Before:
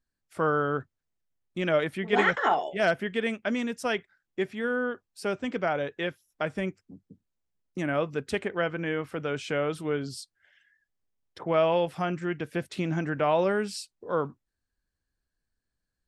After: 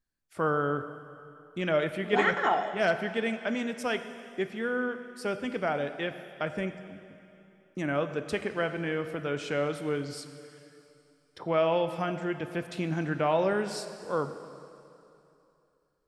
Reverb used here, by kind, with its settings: plate-style reverb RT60 2.8 s, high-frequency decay 1×, DRR 9 dB; trim -2 dB

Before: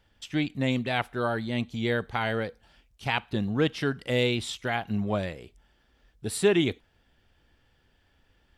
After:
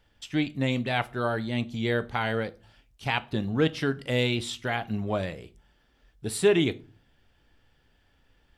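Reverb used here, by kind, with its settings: simulated room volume 180 m³, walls furnished, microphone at 0.35 m

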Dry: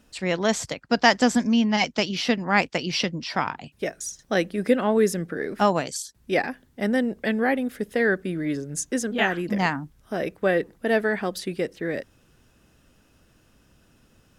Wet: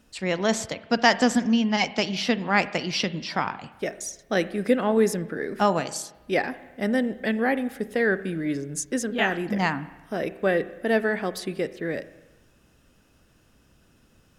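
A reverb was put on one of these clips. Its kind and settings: spring tank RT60 1.1 s, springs 31/36/49 ms, chirp 65 ms, DRR 14 dB; trim -1 dB

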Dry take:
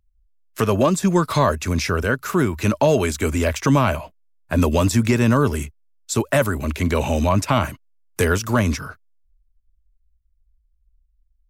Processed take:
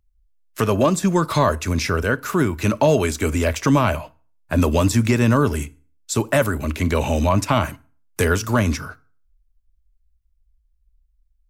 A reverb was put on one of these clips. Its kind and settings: FDN reverb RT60 0.42 s, low-frequency decay 1.05×, high-frequency decay 0.8×, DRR 16 dB

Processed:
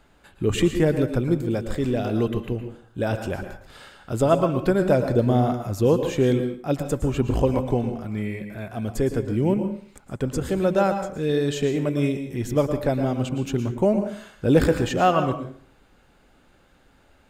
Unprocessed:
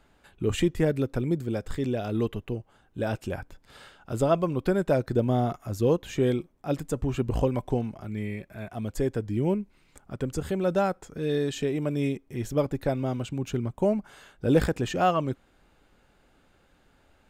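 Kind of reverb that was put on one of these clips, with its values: plate-style reverb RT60 0.5 s, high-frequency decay 0.8×, pre-delay 100 ms, DRR 7.5 dB; trim +4 dB

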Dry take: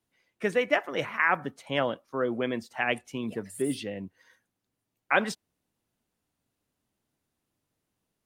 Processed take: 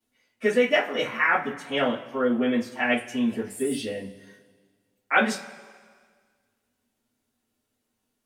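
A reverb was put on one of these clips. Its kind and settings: two-slope reverb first 0.23 s, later 1.7 s, from -22 dB, DRR -9.5 dB; trim -6.5 dB

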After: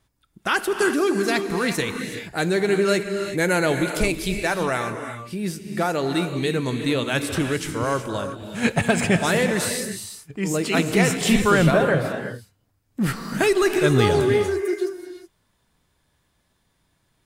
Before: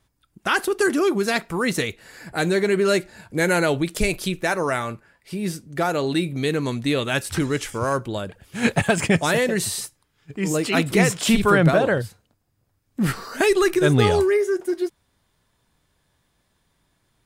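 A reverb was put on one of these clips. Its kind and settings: gated-style reverb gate 400 ms rising, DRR 6.5 dB; trim -1 dB

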